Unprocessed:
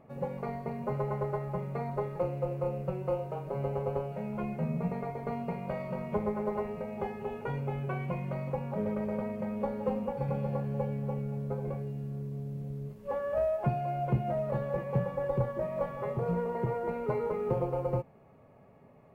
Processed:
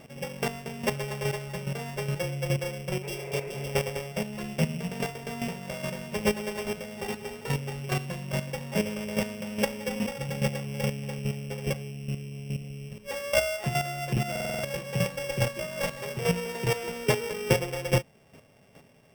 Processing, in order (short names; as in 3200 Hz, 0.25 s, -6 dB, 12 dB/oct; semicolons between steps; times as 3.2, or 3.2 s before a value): sample sorter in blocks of 16 samples; 1.98–2.59 bell 150 Hz +9 dB 0.26 oct; 3.06–3.66 spectral repair 380–2700 Hz after; chopper 2.4 Hz, depth 65%, duty 15%; stuck buffer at 14.31, samples 2048, times 6; gain +8 dB